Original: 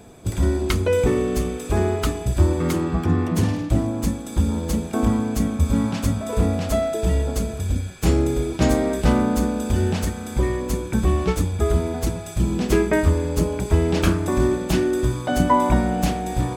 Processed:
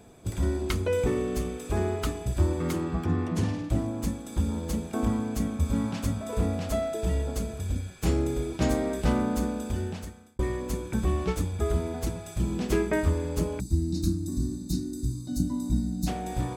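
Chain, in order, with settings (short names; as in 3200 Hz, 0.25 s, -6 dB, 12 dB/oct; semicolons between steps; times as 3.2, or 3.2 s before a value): 3.05–3.64 LPF 9400 Hz 12 dB/oct; 9.51–10.39 fade out; 13.6–16.07 spectral gain 360–3600 Hz -25 dB; gain -7 dB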